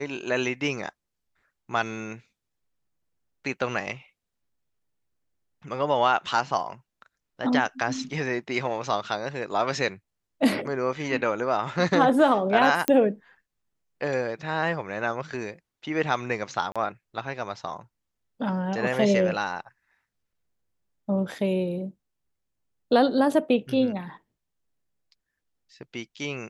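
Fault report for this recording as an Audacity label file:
12.880000	12.880000	pop -7 dBFS
16.720000	16.760000	gap 36 ms

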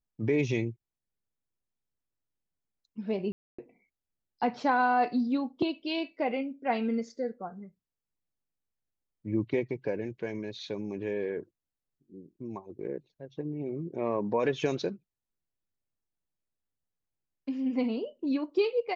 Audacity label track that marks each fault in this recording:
3.320000	3.580000	gap 0.265 s

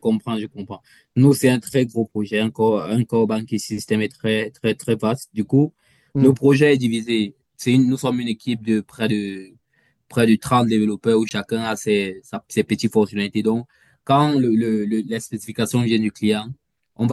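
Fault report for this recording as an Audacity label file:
11.290000	11.310000	gap 19 ms

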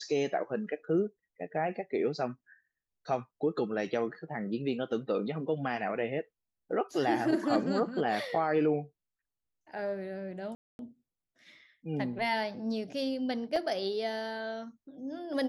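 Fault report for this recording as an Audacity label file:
10.550000	10.790000	gap 0.241 s
13.560000	13.560000	gap 3.5 ms

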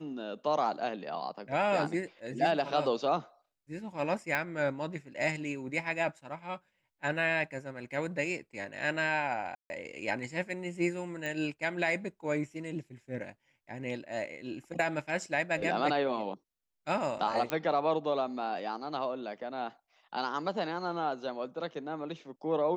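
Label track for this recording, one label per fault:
4.350000	4.350000	pop -16 dBFS
9.550000	9.700000	gap 0.15 s
11.260000	11.260000	pop -23 dBFS
17.500000	17.500000	pop -16 dBFS

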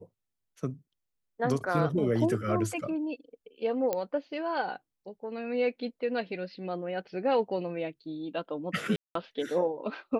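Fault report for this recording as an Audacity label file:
3.930000	3.930000	pop -16 dBFS
8.960000	9.150000	gap 0.193 s

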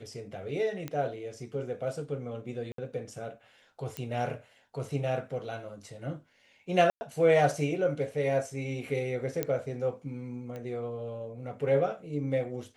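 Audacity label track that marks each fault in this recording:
0.880000	0.880000	pop -21 dBFS
2.720000	2.780000	gap 63 ms
3.970000	3.970000	pop -19 dBFS
6.900000	7.010000	gap 0.11 s
9.430000	9.430000	pop -14 dBFS
10.560000	10.560000	pop -28 dBFS

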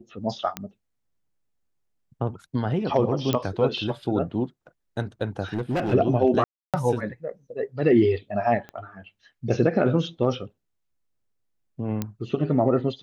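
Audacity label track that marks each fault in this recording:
0.570000	0.570000	pop -13 dBFS
3.330000	3.330000	pop -10 dBFS
5.530000	5.940000	clipped -21 dBFS
6.440000	6.740000	gap 0.297 s
8.690000	8.690000	pop -25 dBFS
12.020000	12.020000	pop -13 dBFS

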